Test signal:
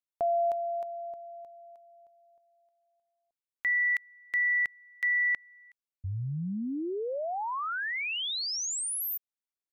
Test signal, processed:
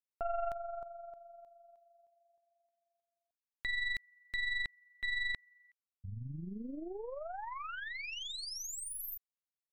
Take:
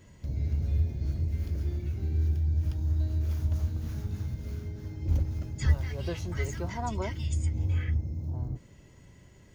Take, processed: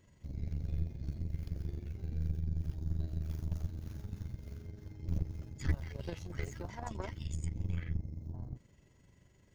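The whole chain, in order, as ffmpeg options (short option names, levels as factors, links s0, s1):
-af "tremolo=f=23:d=0.462,aeval=exprs='0.224*(cos(1*acos(clip(val(0)/0.224,-1,1)))-cos(1*PI/2))+0.0398*(cos(6*acos(clip(val(0)/0.224,-1,1)))-cos(6*PI/2))+0.00158*(cos(7*acos(clip(val(0)/0.224,-1,1)))-cos(7*PI/2))':c=same,volume=0.422"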